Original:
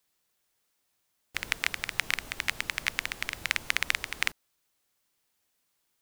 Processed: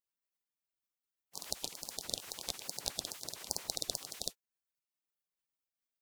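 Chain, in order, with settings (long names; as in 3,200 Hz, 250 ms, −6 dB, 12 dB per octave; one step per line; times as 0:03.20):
pitch shifter swept by a sawtooth −5.5 semitones, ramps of 437 ms
gate on every frequency bin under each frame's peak −15 dB weak
level +2.5 dB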